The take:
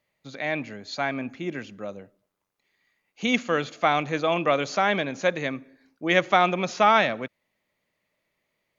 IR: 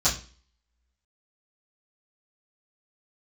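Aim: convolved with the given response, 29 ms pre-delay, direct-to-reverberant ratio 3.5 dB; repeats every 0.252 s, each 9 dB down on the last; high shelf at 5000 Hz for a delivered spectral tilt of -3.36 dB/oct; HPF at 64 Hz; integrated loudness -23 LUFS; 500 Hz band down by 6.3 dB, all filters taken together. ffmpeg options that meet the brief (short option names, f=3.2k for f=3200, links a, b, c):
-filter_complex "[0:a]highpass=64,equalizer=f=500:t=o:g=-8.5,highshelf=f=5k:g=8.5,aecho=1:1:252|504|756|1008:0.355|0.124|0.0435|0.0152,asplit=2[a][b];[1:a]atrim=start_sample=2205,adelay=29[c];[b][c]afir=irnorm=-1:irlink=0,volume=-16dB[d];[a][d]amix=inputs=2:normalize=0,volume=1dB"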